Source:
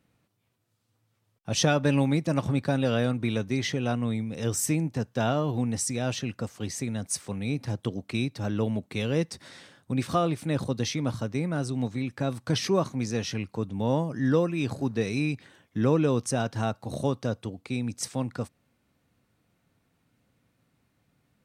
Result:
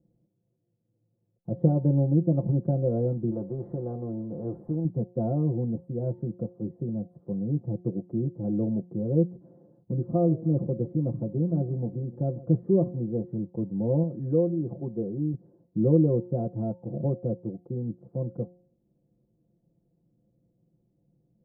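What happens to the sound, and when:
0:03.31–0:04.85: every bin compressed towards the loudest bin 2 to 1
0:10.00–0:12.63: feedback echo with a swinging delay time 148 ms, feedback 48%, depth 116 cents, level −19 dB
0:14.03–0:15.34: low-shelf EQ 330 Hz −5.5 dB
whole clip: inverse Chebyshev low-pass filter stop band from 2,400 Hz, stop band 70 dB; comb filter 5.8 ms, depth 90%; hum removal 178.5 Hz, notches 5

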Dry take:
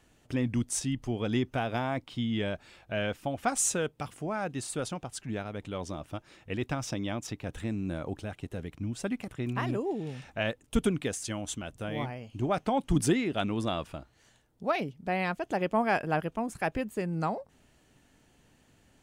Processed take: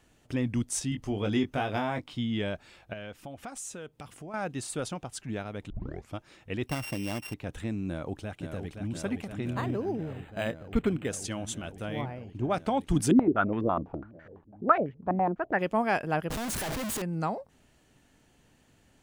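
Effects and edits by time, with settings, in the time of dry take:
0:00.90–0:02.13: double-tracking delay 20 ms −5 dB
0:02.93–0:04.34: downward compressor 2.5 to 1, threshold −43 dBFS
0:05.70: tape start 0.44 s
0:06.67–0:07.34: samples sorted by size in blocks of 16 samples
0:07.88–0:08.92: delay throw 520 ms, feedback 85%, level −6 dB
0:09.54–0:11.09: linearly interpolated sample-rate reduction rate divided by 8×
0:12.01–0:12.50: high-shelf EQ 2,800 Hz −11.5 dB
0:13.11–0:15.59: low-pass on a step sequencer 12 Hz 270–1,800 Hz
0:16.30–0:17.02: sign of each sample alone

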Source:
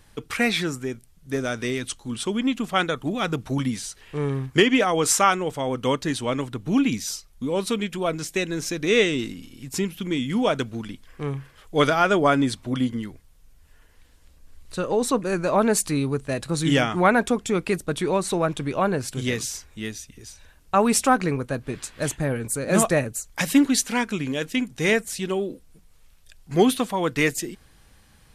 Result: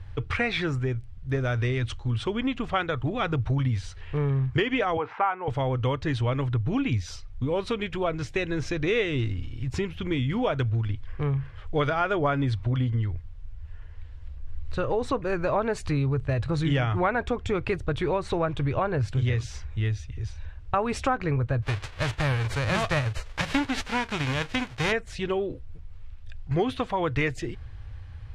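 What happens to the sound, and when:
0:04.97–0:05.48: loudspeaker in its box 340–2,100 Hz, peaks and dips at 350 Hz −7 dB, 580 Hz −8 dB, 860 Hz +7 dB, 1,200 Hz −4 dB, 1,800 Hz −5 dB
0:21.62–0:24.91: spectral envelope flattened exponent 0.3
whole clip: low-pass filter 2,900 Hz 12 dB per octave; low shelf with overshoot 140 Hz +11.5 dB, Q 3; downward compressor 3 to 1, threshold −26 dBFS; level +2.5 dB

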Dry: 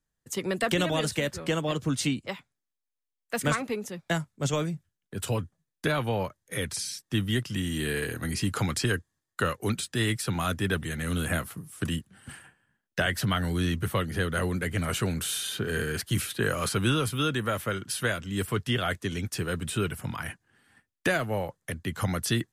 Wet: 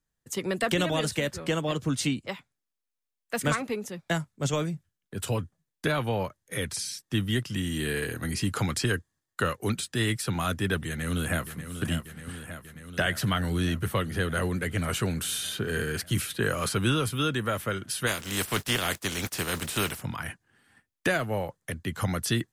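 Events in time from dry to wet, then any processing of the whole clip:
0:10.87–0:11.71: delay throw 590 ms, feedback 75%, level −9.5 dB
0:18.06–0:20.01: compressing power law on the bin magnitudes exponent 0.48

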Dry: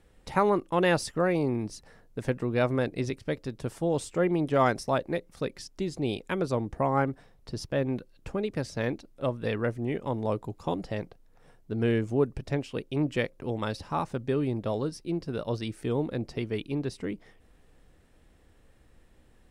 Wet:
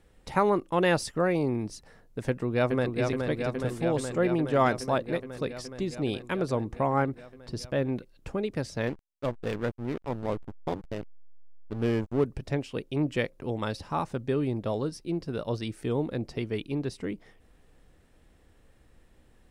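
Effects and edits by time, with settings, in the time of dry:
0:02.28–0:03.00: delay throw 420 ms, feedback 80%, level −4.5 dB
0:08.87–0:12.25: slack as between gear wheels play −27 dBFS

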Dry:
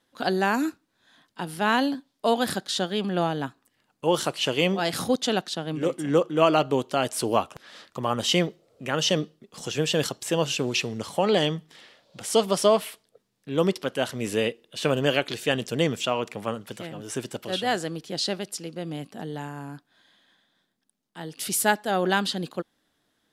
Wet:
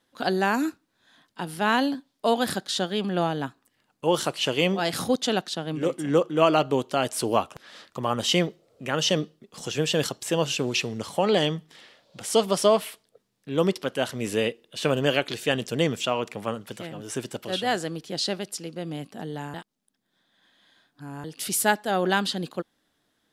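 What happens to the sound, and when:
0:19.54–0:21.24: reverse

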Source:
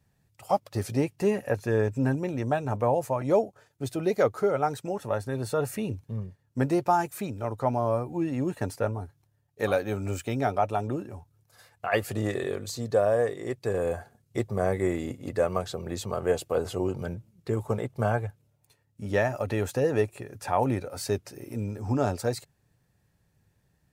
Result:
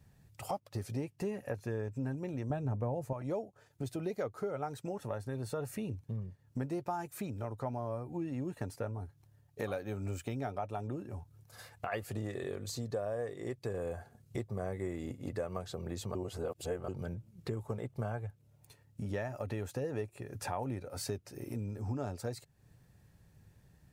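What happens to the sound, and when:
0:02.50–0:03.13: low-shelf EQ 460 Hz +11 dB
0:16.15–0:16.88: reverse
whole clip: low-shelf EQ 230 Hz +5 dB; downward compressor 3 to 1, threshold −43 dBFS; level +3 dB

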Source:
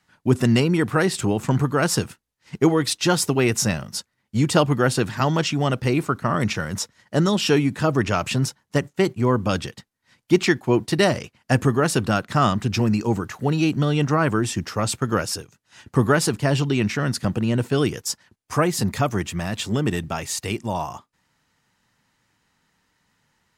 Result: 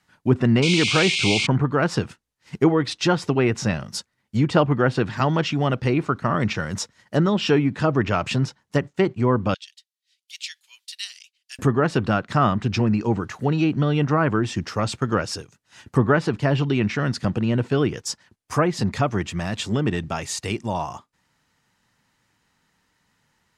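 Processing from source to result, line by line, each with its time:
0:00.62–0:01.47: sound drawn into the spectrogram noise 2,100–9,500 Hz −13 dBFS
0:09.54–0:11.59: four-pole ladder high-pass 2,700 Hz, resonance 35%
whole clip: treble cut that deepens with the level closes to 2,400 Hz, closed at −15 dBFS

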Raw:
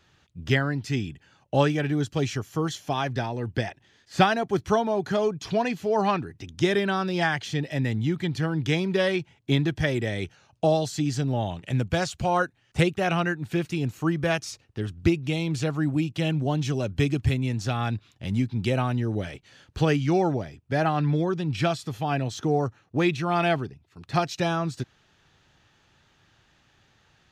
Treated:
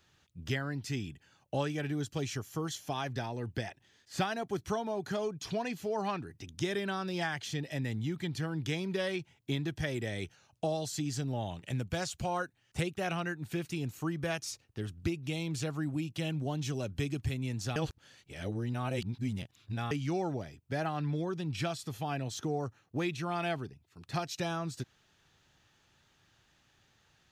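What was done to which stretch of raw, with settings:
0:17.76–0:19.91: reverse
whole clip: high-shelf EQ 6,700 Hz +10 dB; downward compressor 2 to 1, threshold −25 dBFS; level −7 dB

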